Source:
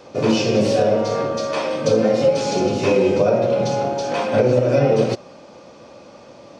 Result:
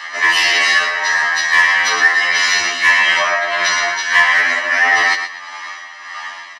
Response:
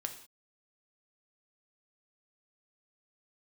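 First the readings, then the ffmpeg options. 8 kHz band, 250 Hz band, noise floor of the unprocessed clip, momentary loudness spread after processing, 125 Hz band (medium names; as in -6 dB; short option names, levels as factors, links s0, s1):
+12.0 dB, -19.0 dB, -44 dBFS, 17 LU, under -25 dB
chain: -filter_complex "[0:a]acrossover=split=7300[s0][s1];[s1]acompressor=threshold=0.00251:ratio=4:attack=1:release=60[s2];[s0][s2]amix=inputs=2:normalize=0,highpass=f=1700:t=q:w=7.8,highshelf=f=5400:g=-9,aecho=1:1:1:0.94,aecho=1:1:118|236|354:0.376|0.101|0.0274,asoftclip=type=tanh:threshold=0.141,tremolo=f=1.6:d=0.59,asplit=2[s3][s4];[1:a]atrim=start_sample=2205[s5];[s4][s5]afir=irnorm=-1:irlink=0,volume=0.596[s6];[s3][s6]amix=inputs=2:normalize=0,alimiter=level_in=9.44:limit=0.891:release=50:level=0:latency=1,afftfilt=real='re*2*eq(mod(b,4),0)':imag='im*2*eq(mod(b,4),0)':win_size=2048:overlap=0.75,volume=0.708"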